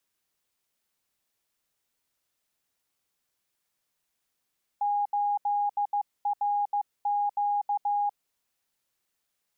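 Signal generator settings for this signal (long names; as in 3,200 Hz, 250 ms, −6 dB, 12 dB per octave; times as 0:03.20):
Morse code "8RQ" 15 words per minute 820 Hz −23.5 dBFS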